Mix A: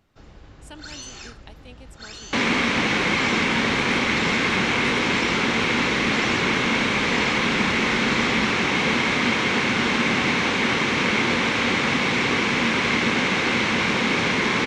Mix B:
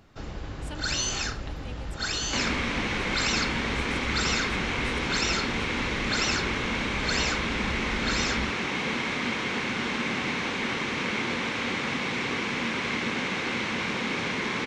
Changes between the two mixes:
first sound +9.5 dB
second sound −8.0 dB

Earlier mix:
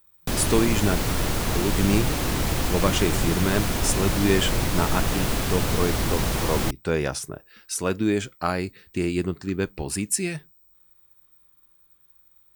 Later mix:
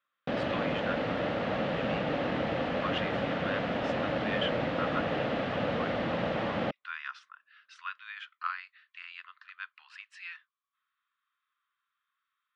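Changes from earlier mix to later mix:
speech: add Chebyshev high-pass with heavy ripple 1,000 Hz, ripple 3 dB
master: add loudspeaker in its box 230–2,700 Hz, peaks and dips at 380 Hz −10 dB, 550 Hz +7 dB, 1,000 Hz −8 dB, 1,500 Hz −3 dB, 2,300 Hz −6 dB

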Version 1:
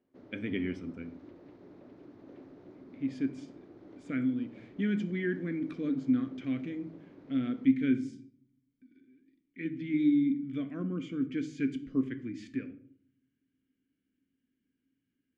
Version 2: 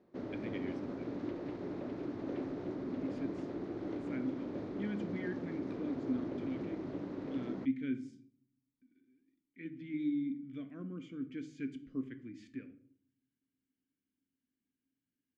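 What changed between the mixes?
speech −9.0 dB
background +12.0 dB

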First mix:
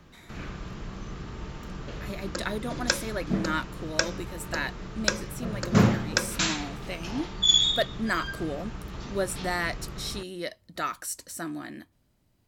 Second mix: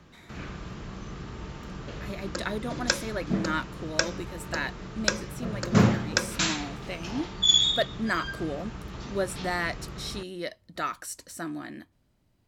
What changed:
speech: add high-shelf EQ 7,400 Hz −7 dB
background: add high-pass filter 42 Hz

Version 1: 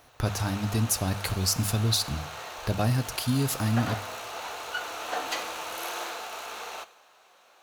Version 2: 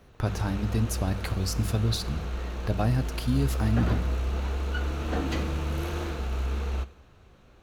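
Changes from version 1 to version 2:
background: remove high-pass with resonance 750 Hz, resonance Q 1.8
master: add high-shelf EQ 3,600 Hz −11 dB

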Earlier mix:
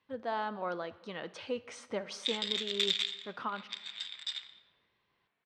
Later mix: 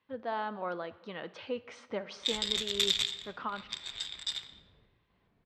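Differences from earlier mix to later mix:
speech: add low-pass filter 4,200 Hz 12 dB per octave
background: remove resonant band-pass 2,300 Hz, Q 0.82

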